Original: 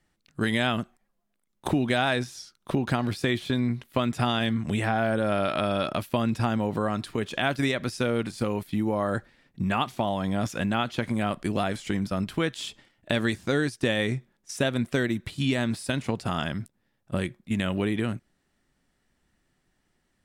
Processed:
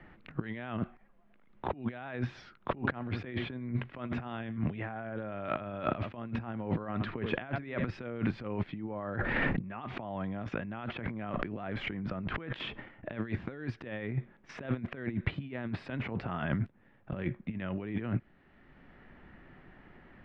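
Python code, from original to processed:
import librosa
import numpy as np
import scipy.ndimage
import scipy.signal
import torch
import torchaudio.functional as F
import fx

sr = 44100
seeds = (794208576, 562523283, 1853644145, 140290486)

y = fx.echo_single(x, sr, ms=79, db=-18.5, at=(2.76, 7.87), fade=0.02)
y = fx.sustainer(y, sr, db_per_s=22.0, at=(9.15, 12.59))
y = fx.over_compress(y, sr, threshold_db=-33.0, ratio=-0.5)
y = scipy.signal.sosfilt(scipy.signal.butter(4, 2400.0, 'lowpass', fs=sr, output='sos'), y)
y = fx.band_squash(y, sr, depth_pct=40)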